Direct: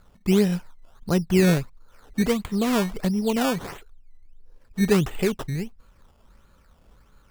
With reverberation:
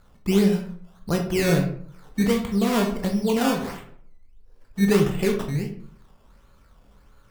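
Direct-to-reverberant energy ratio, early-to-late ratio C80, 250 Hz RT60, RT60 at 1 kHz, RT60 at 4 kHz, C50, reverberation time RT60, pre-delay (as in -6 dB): 2.5 dB, 12.0 dB, 0.65 s, 0.55 s, 0.35 s, 8.0 dB, 0.55 s, 16 ms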